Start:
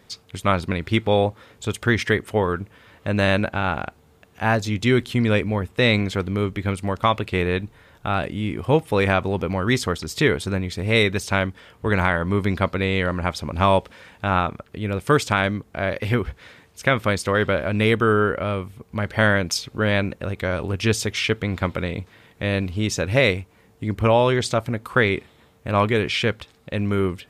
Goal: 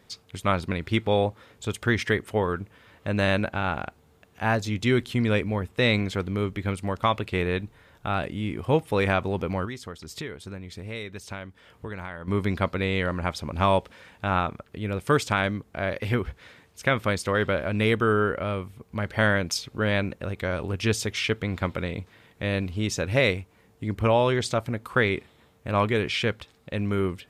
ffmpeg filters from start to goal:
-filter_complex "[0:a]asettb=1/sr,asplit=3[a][b][c];[a]atrim=end=9.654[d];[b]atrim=start=9.65:end=12.28,asetpts=PTS-STARTPTS,afade=t=in:d=0.004:c=qsin,afade=t=out:st=2.626:d=0.004:c=qsin,acompressor=threshold=-33dB:ratio=3[e];[c]atrim=start=12.276[f];[d][e]acrossfade=d=0.004:c1=hsin:c2=qsin[g];[g][f]acrossfade=d=0.004:c1=qsin:c2=hsin,volume=-4dB"

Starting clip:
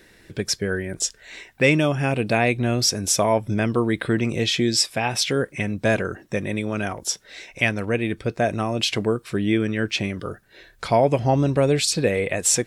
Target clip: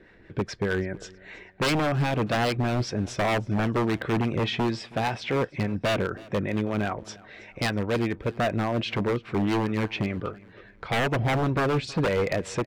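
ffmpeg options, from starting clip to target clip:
-filter_complex "[0:a]lowpass=2k,asettb=1/sr,asplit=3[a][b][c];[a]atrim=end=10.294[d];[b]atrim=start=10.29:end=10.9,asetpts=PTS-STARTPTS,afade=t=in:d=0.004:c=qsin,afade=t=out:st=0.606:d=0.004:c=qsin,acompressor=threshold=-36dB:ratio=2.5[e];[c]atrim=start=10.896[f];[d][e]acrossfade=d=0.004:c1=hsin:c2=qsin[g];[g][f]acrossfade=d=0.004:c1=qsin:c2=hsin,acrossover=split=600[h][i];[h]aeval=exprs='val(0)*(1-0.5/2+0.5/2*cos(2*PI*5*n/s))':c=same[j];[i]aeval=exprs='val(0)*(1-0.5/2-0.5/2*cos(2*PI*5*n/s))':c=same[k];[j][k]amix=inputs=2:normalize=0,aeval=exprs='0.0944*(abs(mod(val(0)/0.0944+3,4)-2)-1)':c=same,aecho=1:1:322|644|966:0.0794|0.031|0.0121,volume=2dB"

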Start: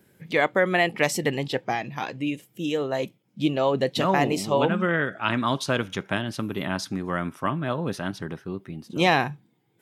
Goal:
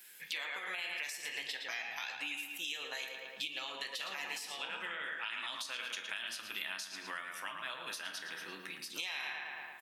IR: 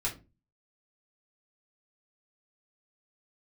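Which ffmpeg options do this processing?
-filter_complex "[0:a]highpass=140,aderivative,asplit=2[a][b];[b]adelay=111,lowpass=f=3.2k:p=1,volume=-7dB,asplit=2[c][d];[d]adelay=111,lowpass=f=3.2k:p=1,volume=0.55,asplit=2[e][f];[f]adelay=111,lowpass=f=3.2k:p=1,volume=0.55,asplit=2[g][h];[h]adelay=111,lowpass=f=3.2k:p=1,volume=0.55,asplit=2[i][j];[j]adelay=111,lowpass=f=3.2k:p=1,volume=0.55,asplit=2[k][l];[l]adelay=111,lowpass=f=3.2k:p=1,volume=0.55,asplit=2[m][n];[n]adelay=111,lowpass=f=3.2k:p=1,volume=0.55[o];[a][c][e][g][i][k][m][o]amix=inputs=8:normalize=0,asplit=2[p][q];[1:a]atrim=start_sample=2205,asetrate=29547,aresample=44100,lowshelf=f=140:g=-10.5[r];[q][r]afir=irnorm=-1:irlink=0,volume=-9dB[s];[p][s]amix=inputs=2:normalize=0,alimiter=level_in=1dB:limit=-24dB:level=0:latency=1:release=103,volume=-1dB,afftfilt=real='re*lt(hypot(re,im),0.0631)':imag='im*lt(hypot(re,im),0.0631)':win_size=1024:overlap=0.75,acompressor=threshold=-51dB:ratio=8,equalizer=f=2.4k:w=0.6:g=10.5,volume=5.5dB"

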